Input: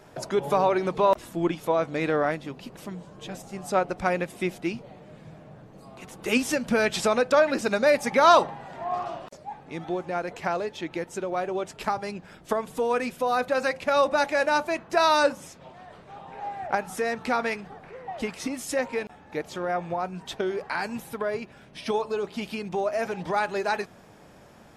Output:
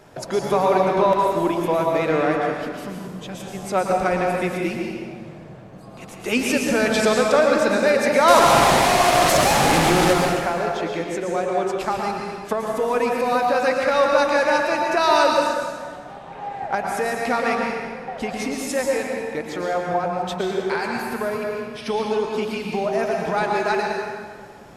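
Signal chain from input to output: 8.28–10.13 delta modulation 64 kbps, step -16 dBFS; in parallel at -8.5 dB: soft clip -20.5 dBFS, distortion -11 dB; on the sum: plate-style reverb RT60 1.7 s, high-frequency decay 0.75×, pre-delay 0.1 s, DRR -0.5 dB

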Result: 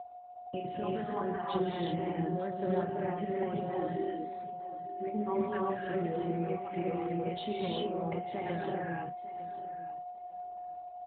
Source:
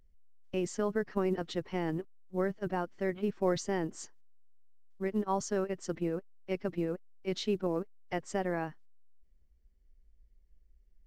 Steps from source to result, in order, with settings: random spectral dropouts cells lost 22%; compressor 10:1, threshold -36 dBFS, peak gain reduction 13 dB; limiter -34 dBFS, peak gain reduction 9.5 dB; 3.57–5.07 fixed phaser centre 350 Hz, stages 4; doubler 29 ms -7 dB; feedback echo 0.901 s, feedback 18%, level -15 dB; non-linear reverb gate 0.4 s rising, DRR -4 dB; whine 720 Hz -43 dBFS; gain +5 dB; AMR-NB 12.2 kbps 8000 Hz

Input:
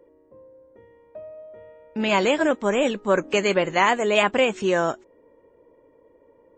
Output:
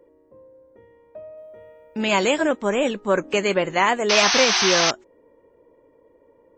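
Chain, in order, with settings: 1.37–2.41 high shelf 5600 Hz +10.5 dB; 4.09–4.91 painted sound noise 660–6400 Hz -20 dBFS

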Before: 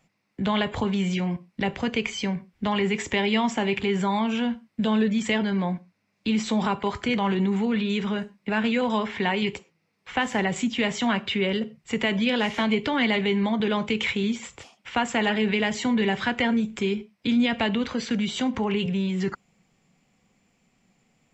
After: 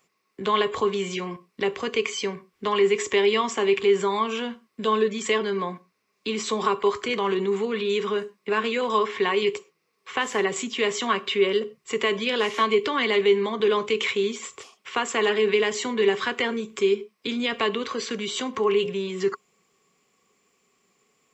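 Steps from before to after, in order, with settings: tilt +3 dB/oct; small resonant body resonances 410/1100 Hz, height 17 dB, ringing for 40 ms; gain -4 dB

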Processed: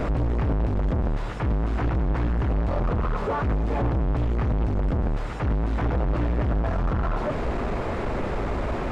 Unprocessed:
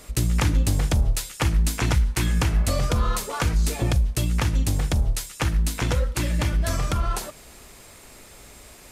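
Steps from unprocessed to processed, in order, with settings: infinite clipping; LPF 1100 Hz 12 dB/oct; pre-echo 0.152 s -12 dB

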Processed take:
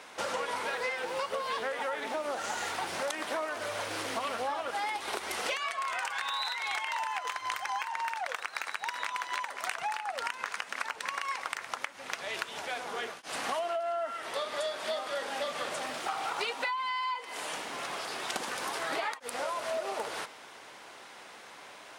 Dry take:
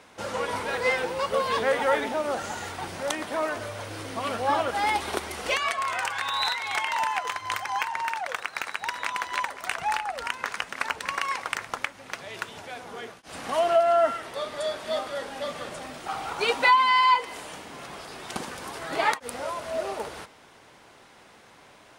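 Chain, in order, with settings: HPF 580 Hz 6 dB/oct; in parallel at -2 dB: limiter -17.5 dBFS, peak gain reduction 7.5 dB; on the sum: compressor 16:1, threshold -30 dBFS, peak gain reduction 18 dB; Doppler distortion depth 0.19 ms

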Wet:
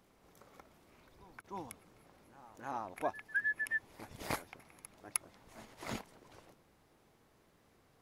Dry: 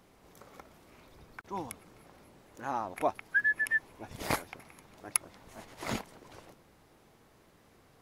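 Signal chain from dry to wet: reverse echo 0.309 s -17.5 dB; gain -6.5 dB

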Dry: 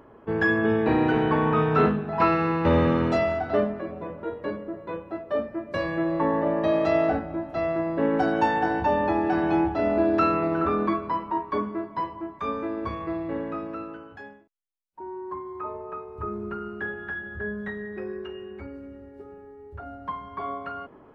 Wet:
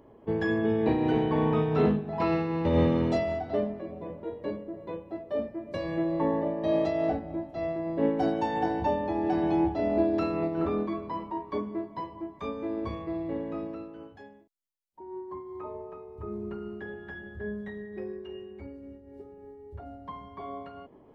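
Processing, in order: bell 1400 Hz -13 dB 0.74 oct; notch 2600 Hz, Q 13; noise-modulated level, depth 65%; gain +1 dB

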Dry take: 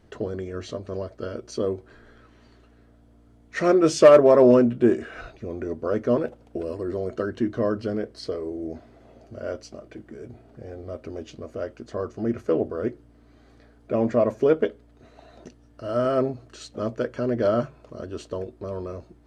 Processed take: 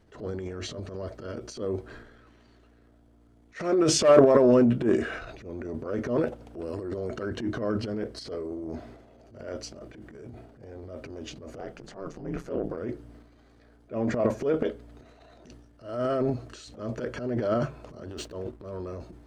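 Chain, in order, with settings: 11.58–12.76 ring modulator 130 Hz -> 50 Hz; 18.1–18.74 backlash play -50.5 dBFS; transient shaper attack -10 dB, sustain +10 dB; gain -4 dB

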